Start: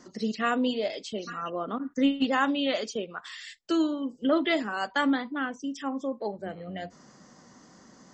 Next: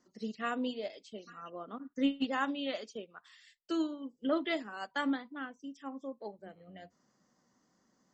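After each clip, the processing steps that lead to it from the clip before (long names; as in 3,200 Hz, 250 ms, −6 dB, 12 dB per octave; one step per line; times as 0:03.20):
mains-hum notches 50/100/150 Hz
expander for the loud parts 1.5 to 1, over −46 dBFS
level −5.5 dB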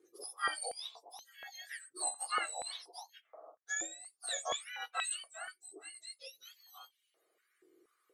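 frequency axis turned over on the octave scale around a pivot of 1,500 Hz
high-pass on a step sequencer 4.2 Hz 350–3,000 Hz
level −2 dB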